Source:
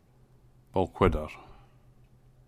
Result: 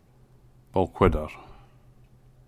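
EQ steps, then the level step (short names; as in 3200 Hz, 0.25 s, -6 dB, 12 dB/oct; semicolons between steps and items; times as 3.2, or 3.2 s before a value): dynamic EQ 4700 Hz, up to -4 dB, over -49 dBFS, Q 0.79; +3.5 dB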